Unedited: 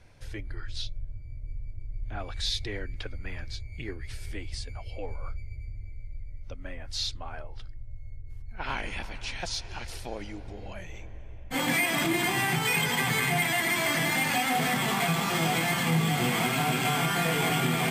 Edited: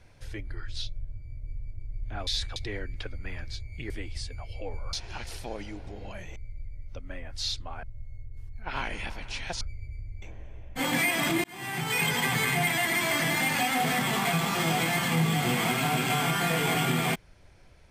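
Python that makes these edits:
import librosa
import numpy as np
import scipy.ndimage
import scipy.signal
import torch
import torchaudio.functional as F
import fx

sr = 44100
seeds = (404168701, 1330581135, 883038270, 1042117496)

y = fx.edit(x, sr, fx.reverse_span(start_s=2.27, length_s=0.29),
    fx.cut(start_s=3.9, length_s=0.37),
    fx.swap(start_s=5.3, length_s=0.61, other_s=9.54, other_length_s=1.43),
    fx.cut(start_s=7.38, length_s=0.38),
    fx.fade_in_span(start_s=12.19, length_s=0.6), tone=tone)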